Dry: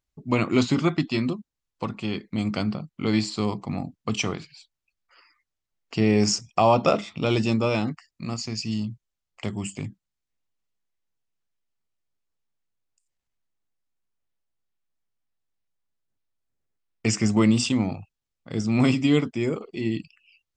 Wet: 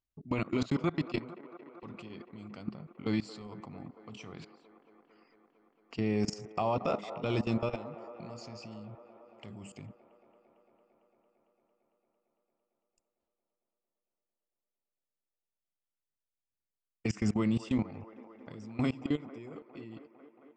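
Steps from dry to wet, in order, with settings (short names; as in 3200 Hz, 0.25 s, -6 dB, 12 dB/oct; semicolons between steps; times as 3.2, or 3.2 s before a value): ending faded out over 2.59 s; level quantiser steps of 23 dB; 0.7–2.1 gate with hold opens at -34 dBFS; high shelf 5300 Hz -10 dB; limiter -20.5 dBFS, peak gain reduction 9.5 dB; on a send: band-limited delay 0.226 s, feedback 80%, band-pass 780 Hz, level -12.5 dB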